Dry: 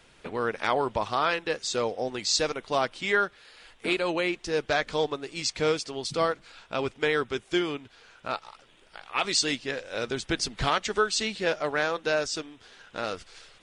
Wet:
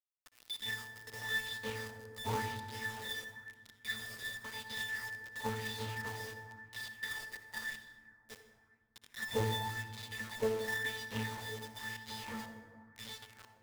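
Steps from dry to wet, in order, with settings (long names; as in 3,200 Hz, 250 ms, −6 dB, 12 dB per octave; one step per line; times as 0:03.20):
band-splitting scrambler in four parts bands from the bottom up 4321
parametric band 1,700 Hz +6.5 dB 0.62 octaves
in parallel at −2.5 dB: downward compressor 6 to 1, threshold −33 dBFS, peak gain reduction 14 dB
on the sum: resonances in every octave A, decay 0.41 s
harmonic generator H 2 −10 dB, 4 −27 dB, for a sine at −30 dBFS
log-companded quantiser 4 bits
on a send at −7 dB: convolution reverb RT60 2.1 s, pre-delay 57 ms
on the sum: auto-filter bell 0.95 Hz 440–3,900 Hz +8 dB
level +6.5 dB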